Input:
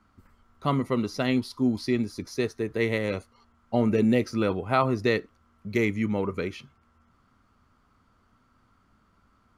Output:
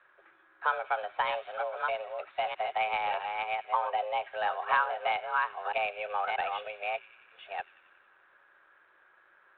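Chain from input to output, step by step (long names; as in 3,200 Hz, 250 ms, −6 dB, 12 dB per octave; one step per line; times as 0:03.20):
delay that plays each chunk backwards 636 ms, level −7.5 dB
parametric band 850 Hz +4 dB 0.78 octaves
downward compressor 3 to 1, threshold −28 dBFS, peak gain reduction 10 dB
three-way crossover with the lows and the highs turned down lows −18 dB, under 380 Hz, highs −20 dB, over 3,000 Hz
on a send: delay with a high-pass on its return 91 ms, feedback 71%, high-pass 2,000 Hz, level −16 dB
on the sum: frequency shifter +310 Hz
level +4.5 dB
G.726 32 kbit/s 8,000 Hz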